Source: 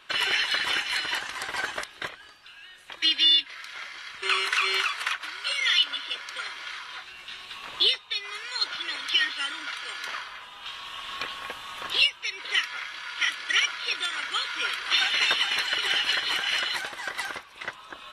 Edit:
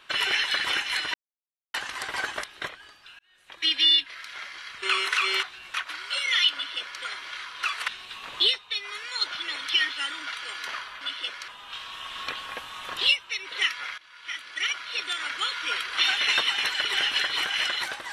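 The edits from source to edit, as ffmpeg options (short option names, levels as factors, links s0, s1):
-filter_complex "[0:a]asplit=10[s0][s1][s2][s3][s4][s5][s6][s7][s8][s9];[s0]atrim=end=1.14,asetpts=PTS-STARTPTS,afade=t=out:st=1.136:d=0.004:c=hsin,apad=pad_dur=0.6[s10];[s1]atrim=start=1.14:end=2.59,asetpts=PTS-STARTPTS,afade=t=in:d=0.004:c=hsin,afade=t=out:st=1.446:d=0.004:c=hsin[s11];[s2]atrim=start=2.59:end=4.832,asetpts=PTS-STARTPTS,afade=t=in:d=0.57[s12];[s3]atrim=start=6.968:end=7.282[s13];[s4]atrim=start=5.078:end=6.972[s14];[s5]atrim=start=4.828:end=5.082[s15];[s6]atrim=start=7.278:end=10.412[s16];[s7]atrim=start=5.878:end=6.352[s17];[s8]atrim=start=10.408:end=12.91,asetpts=PTS-STARTPTS,afade=t=out:st=2.498:d=0.004:c=hsin:silence=0.125893[s18];[s9]atrim=start=12.91,asetpts=PTS-STARTPTS,afade=t=in:d=1.28:silence=0.125893[s19];[s10][s11][s12]concat=n=3:v=0:a=1[s20];[s20][s13]acrossfade=d=0.004:c1=hsin:c2=hsin[s21];[s21][s14]acrossfade=d=0.004:c1=hsin:c2=hsin[s22];[s22][s15]acrossfade=d=0.004:c1=hsin:c2=hsin[s23];[s23][s16]acrossfade=d=0.004:c1=hsin:c2=hsin[s24];[s24][s17]acrossfade=d=0.004:c1=hsin:c2=hsin[s25];[s18][s19]concat=n=2:v=0:a=1[s26];[s25][s26]acrossfade=d=0.004:c1=hsin:c2=hsin"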